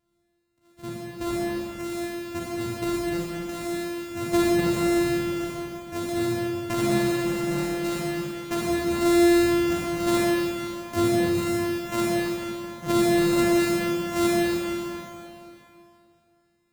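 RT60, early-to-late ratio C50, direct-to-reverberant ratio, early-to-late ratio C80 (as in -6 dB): 2.7 s, -4.0 dB, -5.5 dB, -2.0 dB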